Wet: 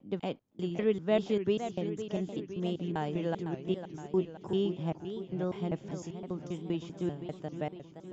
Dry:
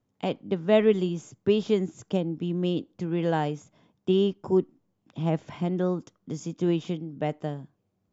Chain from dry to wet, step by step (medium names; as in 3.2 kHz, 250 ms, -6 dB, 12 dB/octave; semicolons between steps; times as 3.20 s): slices played last to first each 197 ms, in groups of 3; modulated delay 512 ms, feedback 61%, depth 193 cents, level -10 dB; trim -7 dB